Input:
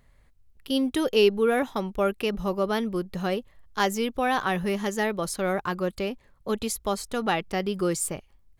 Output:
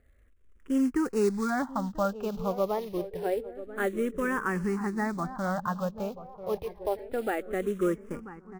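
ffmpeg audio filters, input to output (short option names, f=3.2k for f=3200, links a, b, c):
-filter_complex "[0:a]lowpass=f=1.8k:w=0.5412,lowpass=f=1.8k:w=1.3066,acrusher=bits=5:mode=log:mix=0:aa=0.000001,asplit=2[a][b];[b]adelay=989,lowpass=f=1.2k:p=1,volume=-13dB,asplit=2[c][d];[d]adelay=989,lowpass=f=1.2k:p=1,volume=0.52,asplit=2[e][f];[f]adelay=989,lowpass=f=1.2k:p=1,volume=0.52,asplit=2[g][h];[h]adelay=989,lowpass=f=1.2k:p=1,volume=0.52,asplit=2[i][j];[j]adelay=989,lowpass=f=1.2k:p=1,volume=0.52[k];[a][c][e][g][i][k]amix=inputs=6:normalize=0,asplit=2[l][m];[m]afreqshift=-0.27[n];[l][n]amix=inputs=2:normalize=1"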